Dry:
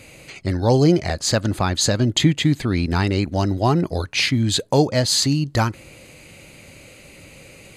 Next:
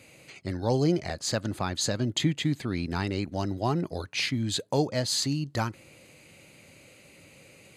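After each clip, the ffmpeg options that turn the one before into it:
ffmpeg -i in.wav -af "highpass=94,volume=-9dB" out.wav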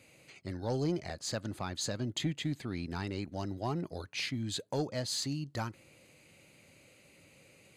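ffmpeg -i in.wav -af "asoftclip=type=tanh:threshold=-14.5dB,volume=-7dB" out.wav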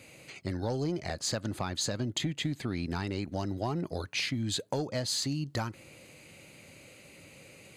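ffmpeg -i in.wav -af "acompressor=threshold=-36dB:ratio=6,volume=7.5dB" out.wav

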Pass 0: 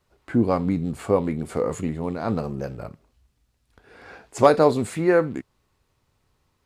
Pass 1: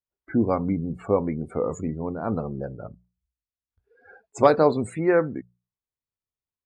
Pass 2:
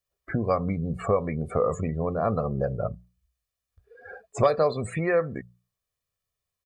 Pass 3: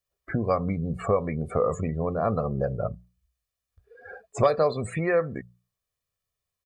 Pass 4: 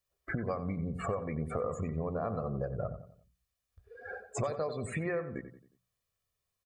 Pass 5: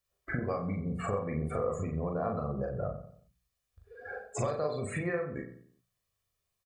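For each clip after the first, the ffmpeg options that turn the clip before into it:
ffmpeg -i in.wav -af "afftdn=noise_reduction=30:noise_floor=-37,bandreject=frequency=60:width_type=h:width=6,bandreject=frequency=120:width_type=h:width=6,bandreject=frequency=180:width_type=h:width=6,volume=-1.5dB" out.wav
ffmpeg -i in.wav -filter_complex "[0:a]acrossover=split=1200|3600[link_01][link_02][link_03];[link_01]acompressor=threshold=-31dB:ratio=4[link_04];[link_02]acompressor=threshold=-42dB:ratio=4[link_05];[link_03]acompressor=threshold=-54dB:ratio=4[link_06];[link_04][link_05][link_06]amix=inputs=3:normalize=0,aecho=1:1:1.7:0.63,volume=7dB" out.wav
ffmpeg -i in.wav -af anull out.wav
ffmpeg -i in.wav -filter_complex "[0:a]acompressor=threshold=-33dB:ratio=4,asplit=2[link_01][link_02];[link_02]adelay=90,lowpass=frequency=1900:poles=1,volume=-10dB,asplit=2[link_03][link_04];[link_04]adelay=90,lowpass=frequency=1900:poles=1,volume=0.42,asplit=2[link_05][link_06];[link_06]adelay=90,lowpass=frequency=1900:poles=1,volume=0.42,asplit=2[link_07][link_08];[link_08]adelay=90,lowpass=frequency=1900:poles=1,volume=0.42[link_09];[link_01][link_03][link_05][link_07][link_09]amix=inputs=5:normalize=0" out.wav
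ffmpeg -i in.wav -filter_complex "[0:a]asplit=2[link_01][link_02];[link_02]adelay=40,volume=-3dB[link_03];[link_01][link_03]amix=inputs=2:normalize=0" out.wav

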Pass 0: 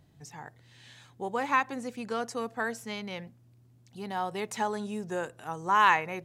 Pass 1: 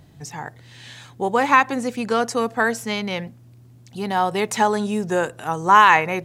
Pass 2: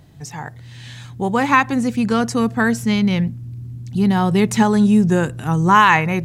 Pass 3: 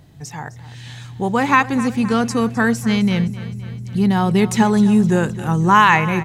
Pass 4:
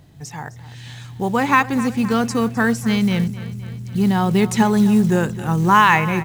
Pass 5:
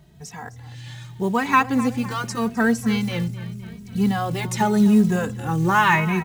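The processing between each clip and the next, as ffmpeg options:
ffmpeg -i in.wav -af "alimiter=level_in=13dB:limit=-1dB:release=50:level=0:latency=1,volume=-1dB" out.wav
ffmpeg -i in.wav -af "asubboost=boost=10:cutoff=210,volume=1.5dB" out.wav
ffmpeg -i in.wav -af "aecho=1:1:259|518|777|1036|1295|1554:0.158|0.0935|0.0552|0.0326|0.0192|0.0113" out.wav
ffmpeg -i in.wav -af "acrusher=bits=7:mode=log:mix=0:aa=0.000001,volume=-1dB" out.wav
ffmpeg -i in.wav -filter_complex "[0:a]asplit=2[link_01][link_02];[link_02]adelay=2.8,afreqshift=0.84[link_03];[link_01][link_03]amix=inputs=2:normalize=1" out.wav

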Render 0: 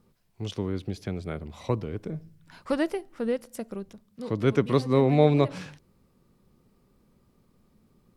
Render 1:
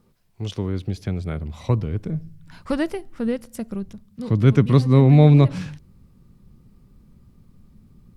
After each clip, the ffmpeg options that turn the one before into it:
ffmpeg -i in.wav -af "asubboost=boost=4.5:cutoff=210,volume=3dB" out.wav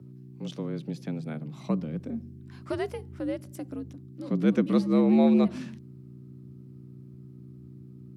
ffmpeg -i in.wav -af "aeval=exprs='val(0)+0.0141*(sin(2*PI*60*n/s)+sin(2*PI*2*60*n/s)/2+sin(2*PI*3*60*n/s)/3+sin(2*PI*4*60*n/s)/4+sin(2*PI*5*60*n/s)/5)':channel_layout=same,afreqshift=73,volume=-8dB" out.wav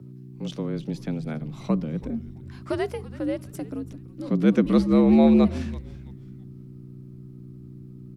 ffmpeg -i in.wav -filter_complex "[0:a]asplit=4[link_01][link_02][link_03][link_04];[link_02]adelay=331,afreqshift=-140,volume=-17.5dB[link_05];[link_03]adelay=662,afreqshift=-280,volume=-27.4dB[link_06];[link_04]adelay=993,afreqshift=-420,volume=-37.3dB[link_07];[link_01][link_05][link_06][link_07]amix=inputs=4:normalize=0,volume=4dB" out.wav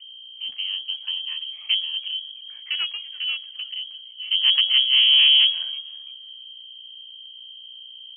ffmpeg -i in.wav -af "aeval=exprs='(tanh(6.31*val(0)+0.8)-tanh(0.8))/6.31':channel_layout=same,lowpass=frequency=2800:width_type=q:width=0.5098,lowpass=frequency=2800:width_type=q:width=0.6013,lowpass=frequency=2800:width_type=q:width=0.9,lowpass=frequency=2800:width_type=q:width=2.563,afreqshift=-3300,crystalizer=i=7:c=0,volume=-5.5dB" out.wav

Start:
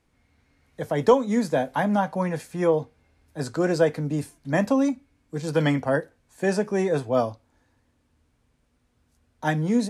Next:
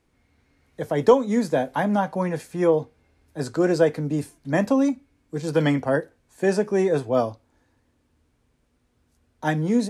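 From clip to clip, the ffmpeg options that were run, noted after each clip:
ffmpeg -i in.wav -af "equalizer=frequency=370:width=2:gain=4" out.wav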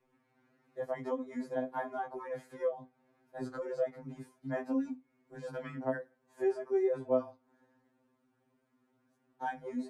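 ffmpeg -i in.wav -filter_complex "[0:a]acrossover=split=200 2000:gain=0.2 1 0.224[link_01][link_02][link_03];[link_01][link_02][link_03]amix=inputs=3:normalize=0,acompressor=threshold=-35dB:ratio=2.5,afftfilt=real='re*2.45*eq(mod(b,6),0)':imag='im*2.45*eq(mod(b,6),0)':win_size=2048:overlap=0.75" out.wav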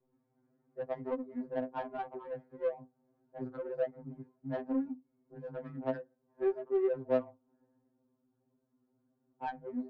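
ffmpeg -i in.wav -af "adynamicsmooth=sensitivity=2:basefreq=720" out.wav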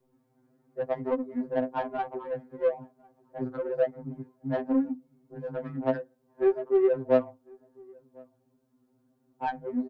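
ffmpeg -i in.wav -filter_complex "[0:a]asplit=2[link_01][link_02];[link_02]adelay=1050,volume=-27dB,highshelf=frequency=4000:gain=-23.6[link_03];[link_01][link_03]amix=inputs=2:normalize=0,volume=7.5dB" out.wav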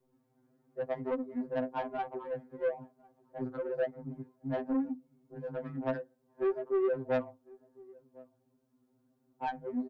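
ffmpeg -i in.wav -af "asoftclip=type=tanh:threshold=-20.5dB,volume=-3.5dB" out.wav

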